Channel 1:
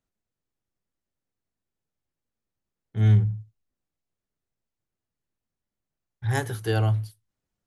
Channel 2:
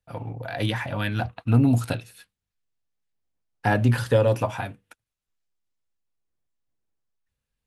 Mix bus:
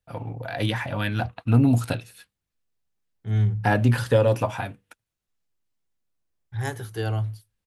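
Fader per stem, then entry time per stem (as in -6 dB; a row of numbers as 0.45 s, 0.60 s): -3.5 dB, +0.5 dB; 0.30 s, 0.00 s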